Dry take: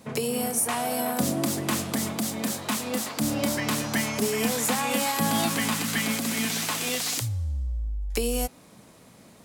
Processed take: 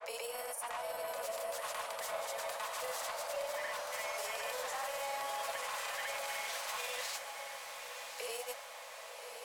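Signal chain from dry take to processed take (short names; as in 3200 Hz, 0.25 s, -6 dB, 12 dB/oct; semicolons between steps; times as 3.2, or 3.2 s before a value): steep high-pass 530 Hz 72 dB/oct; high shelf 2300 Hz -10 dB; notch 750 Hz, Q 12; reverse; compressor, threshold -39 dBFS, peak gain reduction 11.5 dB; reverse; limiter -35 dBFS, peak gain reduction 7.5 dB; soft clip -39 dBFS, distortion -18 dB; grains, pitch spread up and down by 0 st; on a send: diffused feedback echo 1.105 s, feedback 59%, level -7 dB; on the sum: gain +7 dB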